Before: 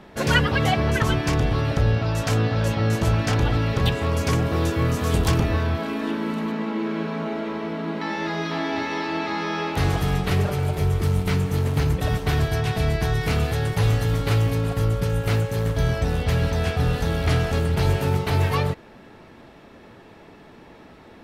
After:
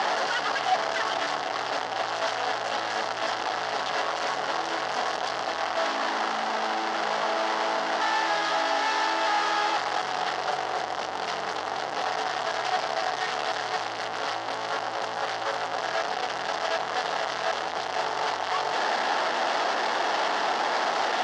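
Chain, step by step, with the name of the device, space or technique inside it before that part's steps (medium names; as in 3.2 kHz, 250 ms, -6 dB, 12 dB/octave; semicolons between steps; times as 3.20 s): home computer beeper (one-bit comparator; cabinet simulation 720–5000 Hz, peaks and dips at 750 Hz +8 dB, 2.4 kHz -9 dB, 3.8 kHz -5 dB)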